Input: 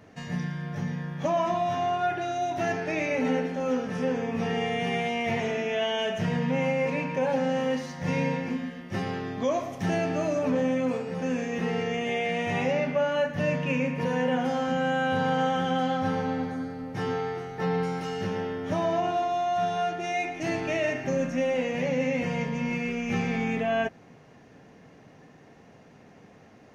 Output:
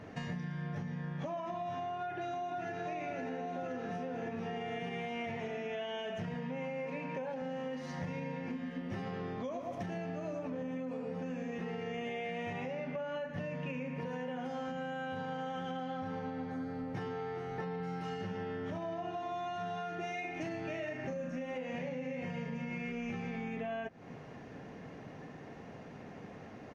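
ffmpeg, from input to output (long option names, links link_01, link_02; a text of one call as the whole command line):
ffmpeg -i in.wav -filter_complex "[0:a]asplit=2[link_01][link_02];[link_02]afade=type=in:start_time=1.81:duration=0.01,afade=type=out:start_time=2.85:duration=0.01,aecho=0:1:520|1040|1560|2080|2600|3120|3640|4160|4680|5200|5720:0.891251|0.579313|0.376554|0.24476|0.159094|0.103411|0.0672172|0.0436912|0.0283992|0.0184595|0.0119987[link_03];[link_01][link_03]amix=inputs=2:normalize=0,asettb=1/sr,asplit=3[link_04][link_05][link_06];[link_04]atrim=end=6.344[link_07];[link_05]atrim=start=6.34:end=7.42,asetpts=PTS-STARTPTS,afade=type=in:duration=0.004:curve=qsin,afade=type=out:start_time=1.076:duration=0.004:curve=qsin,highpass=150[link_08];[link_06]atrim=start=7.416[link_09];[link_07][link_08]acrossfade=duration=0.004:curve1=hsin:curve2=qsin[link_10];[link_10][link_09]acrossfade=duration=0.004:curve1=qsin:curve2=hsin,asplit=3[link_11][link_12][link_13];[link_11]afade=type=out:start_time=8.76:duration=0.02[link_14];[link_12]asplit=2[link_15][link_16];[link_16]adelay=119,lowpass=frequency=970:poles=1,volume=-5dB,asplit=2[link_17][link_18];[link_18]adelay=119,lowpass=frequency=970:poles=1,volume=0.41,asplit=2[link_19][link_20];[link_20]adelay=119,lowpass=frequency=970:poles=1,volume=0.41,asplit=2[link_21][link_22];[link_22]adelay=119,lowpass=frequency=970:poles=1,volume=0.41,asplit=2[link_23][link_24];[link_24]adelay=119,lowpass=frequency=970:poles=1,volume=0.41[link_25];[link_15][link_17][link_19][link_21][link_23][link_25]amix=inputs=6:normalize=0,afade=type=in:start_time=8.76:duration=0.02,afade=type=out:start_time=11.5:duration=0.02[link_26];[link_13]afade=type=in:start_time=11.5:duration=0.02[link_27];[link_14][link_26][link_27]amix=inputs=3:normalize=0,asettb=1/sr,asplit=3[link_28][link_29][link_30];[link_28]atrim=end=14.114[link_31];[link_29]atrim=start=14.11:end=15.77,asetpts=PTS-STARTPTS,afade=type=in:duration=0.004:curve=qsin,afade=type=out:start_time=1.656:duration=0.004:curve=qsin,equalizer=frequency=7800:width=0.52:gain=3.5[link_32];[link_30]atrim=start=15.766[link_33];[link_31][link_32]acrossfade=duration=0.004:curve1=hsin:curve2=qsin[link_34];[link_34][link_33]acrossfade=duration=0.004:curve1=qsin:curve2=hsin,asettb=1/sr,asplit=3[link_35][link_36][link_37];[link_35]atrim=end=17.764[link_38];[link_36]atrim=start=17.76:end=22.92,asetpts=PTS-STARTPTS,afade=type=in:duration=0.004:curve=qsin,afade=type=out:start_time=5.156:duration=0.004:curve=qsin,asplit=2[link_39][link_40];[link_40]adelay=39,volume=-5dB[link_41];[link_39][link_41]amix=inputs=2:normalize=0,atrim=end_sample=227556[link_42];[link_37]atrim=start=22.916[link_43];[link_38][link_42]acrossfade=duration=0.004:curve1=hsin:curve2=qsin[link_44];[link_44][link_43]acrossfade=duration=0.004:curve1=qsin:curve2=hsin,highshelf=frequency=5600:gain=-11.5,alimiter=level_in=0.5dB:limit=-24dB:level=0:latency=1:release=318,volume=-0.5dB,acompressor=threshold=-41dB:ratio=6,volume=4dB" out.wav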